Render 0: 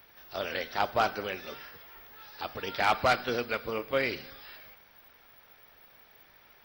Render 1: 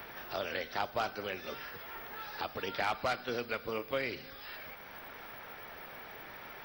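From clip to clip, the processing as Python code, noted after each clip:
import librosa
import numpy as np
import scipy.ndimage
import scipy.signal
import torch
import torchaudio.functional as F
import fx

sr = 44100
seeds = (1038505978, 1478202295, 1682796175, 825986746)

y = fx.band_squash(x, sr, depth_pct=70)
y = F.gain(torch.from_numpy(y), -4.5).numpy()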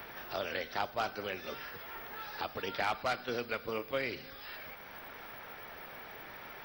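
y = fx.attack_slew(x, sr, db_per_s=420.0)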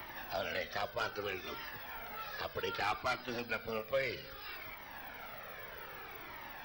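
y = 10.0 ** (-25.5 / 20.0) * np.tanh(x / 10.0 ** (-25.5 / 20.0))
y = fx.comb_cascade(y, sr, direction='falling', hz=0.63)
y = F.gain(torch.from_numpy(y), 4.5).numpy()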